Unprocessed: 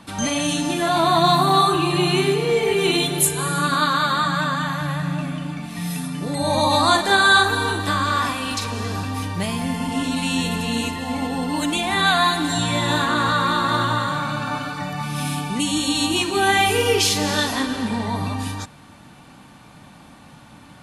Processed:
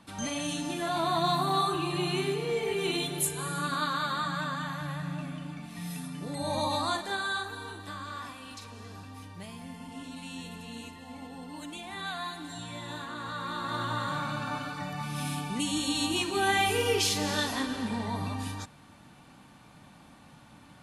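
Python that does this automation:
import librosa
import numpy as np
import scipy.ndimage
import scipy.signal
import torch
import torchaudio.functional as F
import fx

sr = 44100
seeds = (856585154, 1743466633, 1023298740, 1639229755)

y = fx.gain(x, sr, db=fx.line((6.62, -11.0), (7.4, -19.0), (13.19, -19.0), (14.15, -8.5)))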